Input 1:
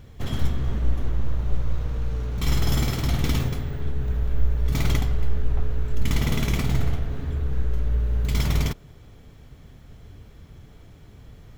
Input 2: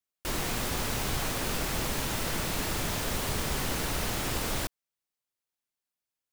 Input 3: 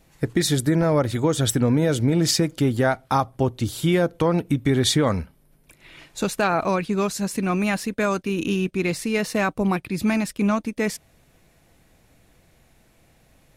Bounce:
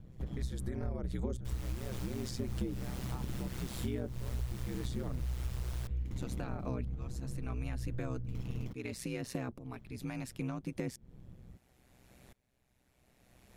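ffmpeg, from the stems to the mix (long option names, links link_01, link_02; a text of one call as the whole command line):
ffmpeg -i stem1.wav -i stem2.wav -i stem3.wav -filter_complex "[0:a]tiltshelf=frequency=820:gain=6.5,volume=-10.5dB[link_01];[1:a]adelay=1200,volume=-4.5dB[link_02];[2:a]aeval=exprs='val(0)*pow(10,-24*if(lt(mod(-0.73*n/s,1),2*abs(-0.73)/1000),1-mod(-0.73*n/s,1)/(2*abs(-0.73)/1000),(mod(-0.73*n/s,1)-2*abs(-0.73)/1000)/(1-2*abs(-0.73)/1000))/20)':channel_layout=same,volume=3dB[link_03];[link_01][link_02][link_03]amix=inputs=3:normalize=0,acrossover=split=430[link_04][link_05];[link_05]acompressor=threshold=-34dB:ratio=5[link_06];[link_04][link_06]amix=inputs=2:normalize=0,aeval=exprs='val(0)*sin(2*PI*63*n/s)':channel_layout=same,acompressor=threshold=-37dB:ratio=3" out.wav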